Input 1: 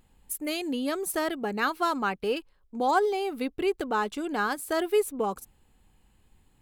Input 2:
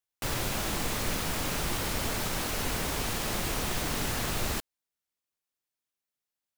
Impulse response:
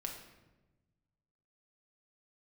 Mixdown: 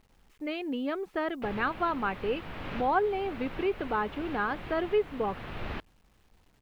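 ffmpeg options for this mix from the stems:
-filter_complex "[0:a]volume=-2.5dB,asplit=2[link_01][link_02];[1:a]adelay=1200,volume=-1.5dB[link_03];[link_02]apad=whole_len=342755[link_04];[link_03][link_04]sidechaincompress=threshold=-35dB:ratio=10:attack=49:release=842[link_05];[link_01][link_05]amix=inputs=2:normalize=0,lowpass=frequency=3000:width=0.5412,lowpass=frequency=3000:width=1.3066,acrusher=bits=10:mix=0:aa=0.000001"

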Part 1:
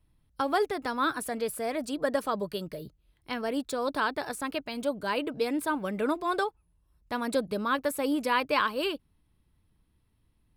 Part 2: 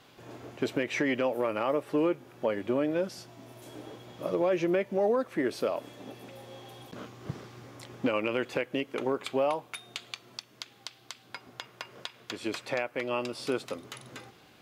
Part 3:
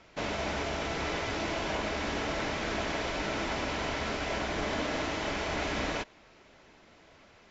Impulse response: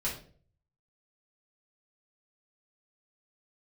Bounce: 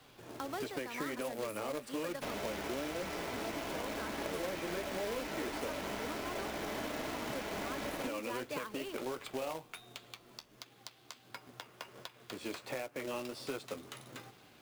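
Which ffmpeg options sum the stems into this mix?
-filter_complex "[0:a]volume=-10dB[link_01];[1:a]flanger=delay=6.5:depth=6.9:regen=-44:speed=1.4:shape=sinusoidal,volume=0.5dB[link_02];[2:a]adelay=2050,volume=-1dB[link_03];[link_01][link_02][link_03]amix=inputs=3:normalize=0,acrossover=split=150|480|1300[link_04][link_05][link_06][link_07];[link_04]acompressor=threshold=-57dB:ratio=4[link_08];[link_05]acompressor=threshold=-43dB:ratio=4[link_09];[link_06]acompressor=threshold=-44dB:ratio=4[link_10];[link_07]acompressor=threshold=-47dB:ratio=4[link_11];[link_08][link_09][link_10][link_11]amix=inputs=4:normalize=0,acrusher=bits=2:mode=log:mix=0:aa=0.000001"

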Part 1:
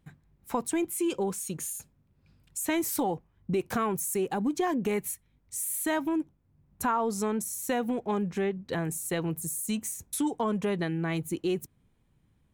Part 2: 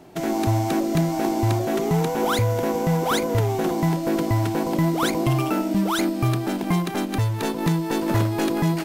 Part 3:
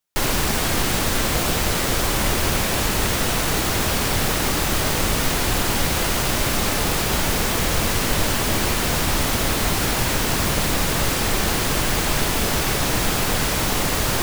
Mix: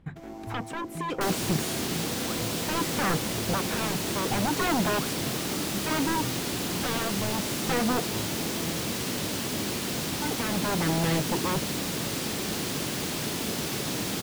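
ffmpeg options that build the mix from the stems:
ffmpeg -i stem1.wav -i stem2.wav -i stem3.wav -filter_complex "[0:a]aeval=exprs='0.158*sin(PI/2*5.01*val(0)/0.158)':channel_layout=same,lowpass=frequency=3000:poles=1,tremolo=f=0.63:d=0.53,volume=-6dB,asplit=3[link_01][link_02][link_03];[link_01]atrim=end=8.02,asetpts=PTS-STARTPTS,afade=type=out:start_time=8.016:duration=0.004:curve=hsin[link_04];[link_02]atrim=start=8.02:end=10.22,asetpts=PTS-STARTPTS,volume=0[link_05];[link_03]atrim=start=10.22,asetpts=PTS-STARTPTS,afade=type=in:duration=0.004:curve=hsin[link_06];[link_04][link_05][link_06]concat=n=3:v=0:a=1[link_07];[1:a]aeval=exprs='sgn(val(0))*max(abs(val(0))-0.0126,0)':channel_layout=same,volume=-16dB[link_08];[2:a]highpass=170,acrossover=split=400|3000[link_09][link_10][link_11];[link_10]acompressor=threshold=-38dB:ratio=3[link_12];[link_09][link_12][link_11]amix=inputs=3:normalize=0,adelay=1050,volume=-3.5dB[link_13];[link_07][link_08][link_13]amix=inputs=3:normalize=0,highshelf=frequency=4800:gain=-7" out.wav

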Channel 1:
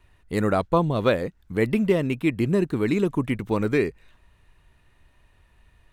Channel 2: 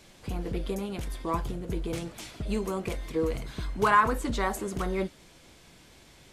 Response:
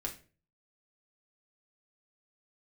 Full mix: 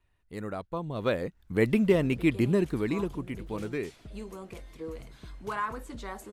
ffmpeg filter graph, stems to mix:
-filter_complex "[0:a]volume=-2dB,afade=type=in:start_time=0.82:duration=0.66:silence=0.251189,afade=type=out:start_time=2.41:duration=0.76:silence=0.334965[link_01];[1:a]adelay=1650,volume=-11dB[link_02];[link_01][link_02]amix=inputs=2:normalize=0"

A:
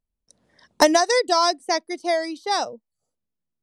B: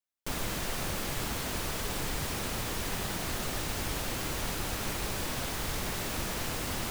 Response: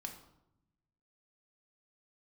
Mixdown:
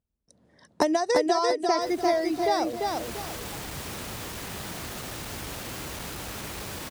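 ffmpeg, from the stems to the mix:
-filter_complex "[0:a]acompressor=threshold=-21dB:ratio=6,tiltshelf=frequency=820:gain=5,volume=0dB,asplit=3[link_01][link_02][link_03];[link_02]volume=-3.5dB[link_04];[1:a]asoftclip=type=tanh:threshold=-28.5dB,adelay=1550,volume=0dB[link_05];[link_03]apad=whole_len=372710[link_06];[link_05][link_06]sidechaincompress=threshold=-34dB:ratio=8:attack=36:release=612[link_07];[link_04]aecho=0:1:344|688|1032|1376:1|0.31|0.0961|0.0298[link_08];[link_01][link_07][link_08]amix=inputs=3:normalize=0,highpass=54"

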